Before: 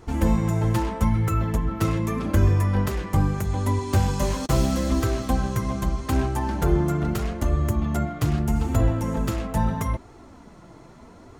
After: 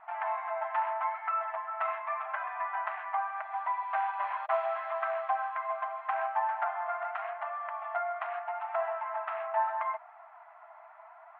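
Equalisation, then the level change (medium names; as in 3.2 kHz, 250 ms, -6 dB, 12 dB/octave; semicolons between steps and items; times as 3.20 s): brick-wall FIR high-pass 620 Hz; low-pass 2.3 kHz 24 dB/octave; distance through air 430 m; +3.5 dB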